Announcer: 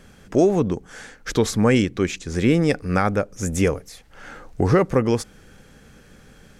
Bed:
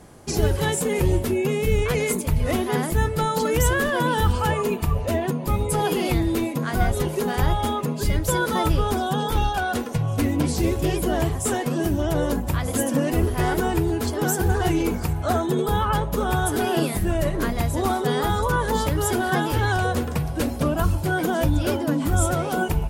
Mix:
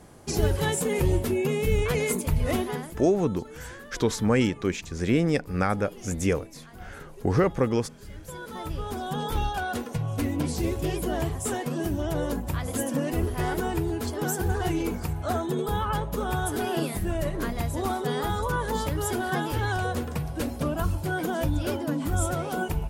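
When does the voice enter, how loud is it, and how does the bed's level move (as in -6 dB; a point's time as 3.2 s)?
2.65 s, -5.0 dB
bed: 2.6 s -3 dB
3.1 s -22.5 dB
8 s -22.5 dB
9.24 s -5.5 dB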